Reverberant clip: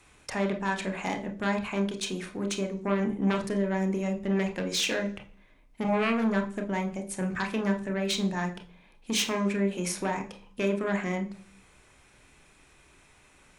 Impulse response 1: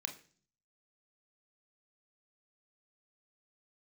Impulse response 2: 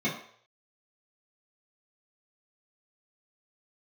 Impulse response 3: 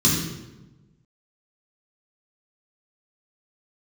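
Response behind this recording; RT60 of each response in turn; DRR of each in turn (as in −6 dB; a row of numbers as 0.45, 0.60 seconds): 1; 0.45, 0.60, 1.1 seconds; 4.5, −9.5, −6.0 decibels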